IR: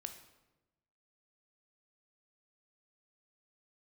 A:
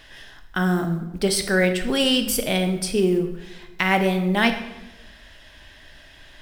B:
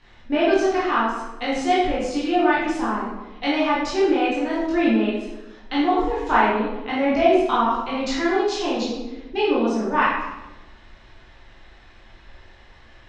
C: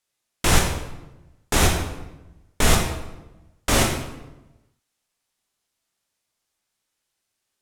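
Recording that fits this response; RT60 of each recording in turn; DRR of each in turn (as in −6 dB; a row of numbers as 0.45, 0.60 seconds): A; 1.0, 1.0, 1.0 seconds; 6.5, −8.5, 0.5 decibels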